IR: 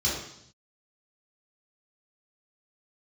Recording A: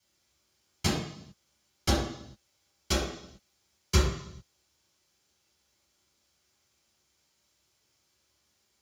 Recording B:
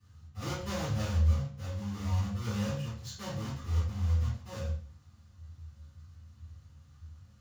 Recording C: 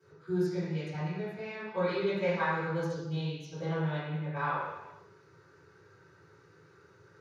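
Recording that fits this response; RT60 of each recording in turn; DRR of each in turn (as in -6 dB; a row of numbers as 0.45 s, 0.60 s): A; 0.70 s, 0.45 s, no single decay rate; -7.5 dB, -15.0 dB, -17.0 dB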